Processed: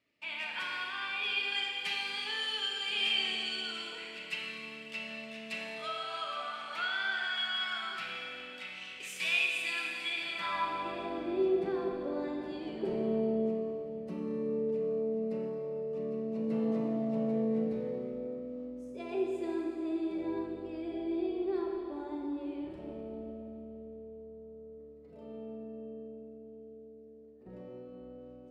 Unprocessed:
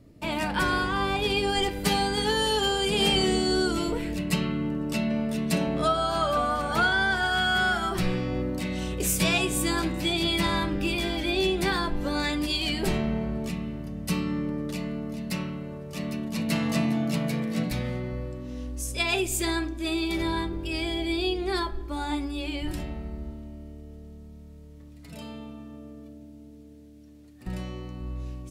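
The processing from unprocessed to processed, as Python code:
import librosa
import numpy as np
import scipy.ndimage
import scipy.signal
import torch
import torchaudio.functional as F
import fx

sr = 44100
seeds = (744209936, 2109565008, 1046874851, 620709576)

y = fx.filter_sweep_bandpass(x, sr, from_hz=2500.0, to_hz=430.0, start_s=10.05, end_s=11.16, q=2.4)
y = fx.rev_schroeder(y, sr, rt60_s=2.8, comb_ms=28, drr_db=0.0)
y = y * librosa.db_to_amplitude(-3.0)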